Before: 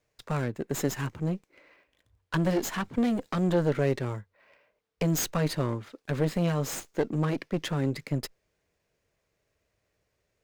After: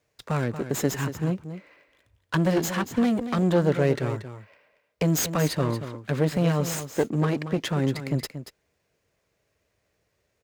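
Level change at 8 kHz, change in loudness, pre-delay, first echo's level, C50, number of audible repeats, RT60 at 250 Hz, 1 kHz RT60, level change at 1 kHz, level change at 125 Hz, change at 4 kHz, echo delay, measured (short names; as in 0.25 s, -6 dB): +4.0 dB, +4.0 dB, none, -11.0 dB, none, 1, none, none, +4.0 dB, +4.0 dB, +4.0 dB, 0.232 s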